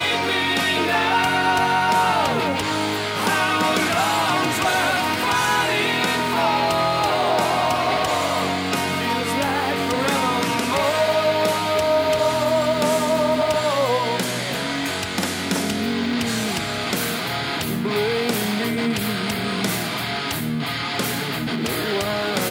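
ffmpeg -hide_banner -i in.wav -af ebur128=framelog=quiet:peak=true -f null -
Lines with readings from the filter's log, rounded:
Integrated loudness:
  I:         -20.5 LUFS
  Threshold: -30.5 LUFS
Loudness range:
  LRA:         3.8 LU
  Threshold: -40.5 LUFS
  LRA low:   -23.0 LUFS
  LRA high:  -19.2 LUFS
True peak:
  Peak:       -6.5 dBFS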